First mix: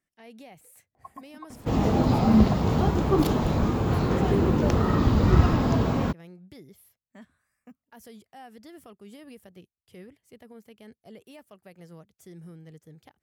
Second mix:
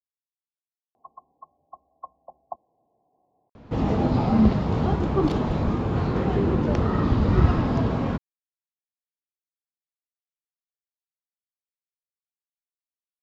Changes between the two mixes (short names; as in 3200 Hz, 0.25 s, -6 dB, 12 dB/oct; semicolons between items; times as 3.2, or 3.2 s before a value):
speech: muted; second sound: entry +2.05 s; master: add air absorption 130 m